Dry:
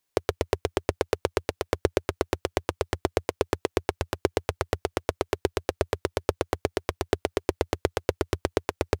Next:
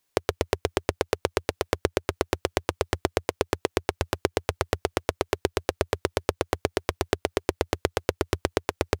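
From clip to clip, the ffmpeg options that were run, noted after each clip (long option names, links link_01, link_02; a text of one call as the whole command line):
ffmpeg -i in.wav -af "acompressor=threshold=-23dB:ratio=6,volume=4dB" out.wav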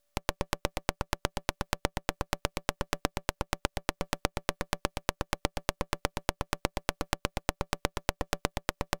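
ffmpeg -i in.wav -af "acompressor=threshold=-25dB:ratio=6,aeval=exprs='val(0)*sin(2*PI*290*n/s)':channel_layout=same,aeval=exprs='abs(val(0))':channel_layout=same,volume=3.5dB" out.wav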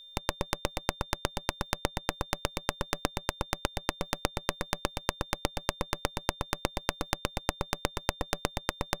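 ffmpeg -i in.wav -af "aeval=exprs='val(0)+0.00398*sin(2*PI*3600*n/s)':channel_layout=same" out.wav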